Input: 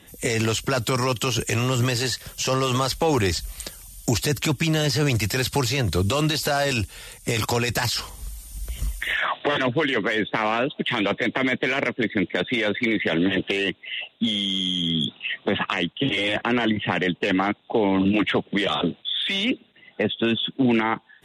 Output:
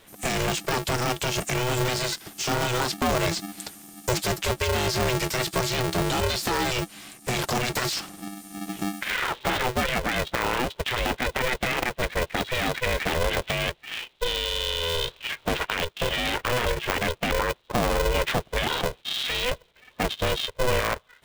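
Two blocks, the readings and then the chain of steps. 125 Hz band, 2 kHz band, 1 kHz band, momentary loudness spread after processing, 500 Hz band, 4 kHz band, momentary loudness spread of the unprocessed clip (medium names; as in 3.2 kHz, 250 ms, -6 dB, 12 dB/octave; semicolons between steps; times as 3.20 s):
-4.5 dB, -2.5 dB, 0.0 dB, 6 LU, -2.5 dB, -2.5 dB, 6 LU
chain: polarity switched at an audio rate 250 Hz; trim -3 dB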